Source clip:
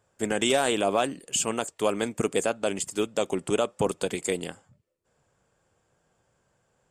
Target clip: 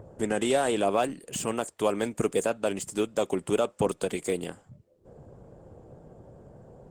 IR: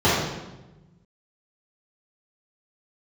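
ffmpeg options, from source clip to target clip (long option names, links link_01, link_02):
-filter_complex "[0:a]acrossover=split=750|1100[link_01][link_02][link_03];[link_01]acompressor=mode=upward:threshold=-28dB:ratio=2.5[link_04];[link_03]asoftclip=type=tanh:threshold=-27.5dB[link_05];[link_04][link_02][link_05]amix=inputs=3:normalize=0" -ar 48000 -c:a libopus -b:a 20k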